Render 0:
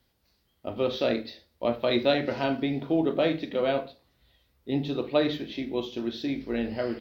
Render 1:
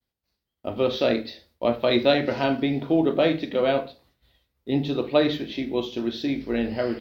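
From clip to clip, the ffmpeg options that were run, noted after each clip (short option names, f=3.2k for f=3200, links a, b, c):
-af "agate=range=-33dB:threshold=-59dB:ratio=3:detection=peak,volume=4dB"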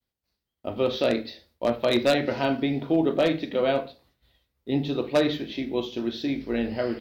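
-af "aeval=exprs='0.282*(abs(mod(val(0)/0.282+3,4)-2)-1)':c=same,volume=-1.5dB"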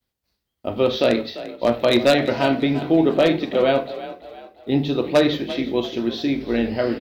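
-filter_complex "[0:a]asplit=5[a][b][c][d][e];[b]adelay=344,afreqshift=38,volume=-15dB[f];[c]adelay=688,afreqshift=76,volume=-22.5dB[g];[d]adelay=1032,afreqshift=114,volume=-30.1dB[h];[e]adelay=1376,afreqshift=152,volume=-37.6dB[i];[a][f][g][h][i]amix=inputs=5:normalize=0,volume=5.5dB"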